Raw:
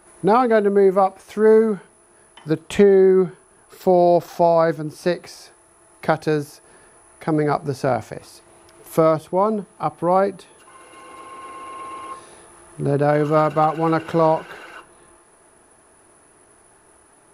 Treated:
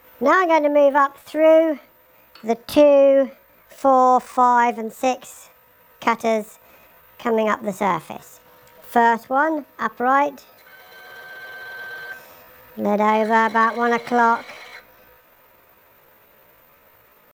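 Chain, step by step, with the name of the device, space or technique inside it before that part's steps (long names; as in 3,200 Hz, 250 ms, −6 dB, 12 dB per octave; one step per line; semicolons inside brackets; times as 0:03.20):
chipmunk voice (pitch shifter +6.5 semitones)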